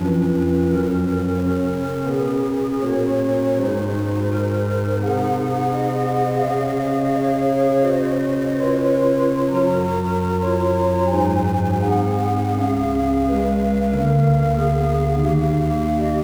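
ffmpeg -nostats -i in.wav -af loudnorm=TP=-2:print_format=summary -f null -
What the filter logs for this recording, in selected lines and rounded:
Input Integrated:    -19.4 LUFS
Input True Peak:      -5.8 dBTP
Input LRA:             2.1 LU
Input Threshold:     -29.4 LUFS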